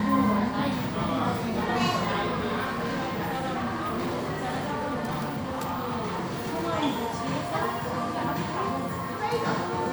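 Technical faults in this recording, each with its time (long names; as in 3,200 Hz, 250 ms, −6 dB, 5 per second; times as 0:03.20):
0:02.64–0:06.65: clipping −26 dBFS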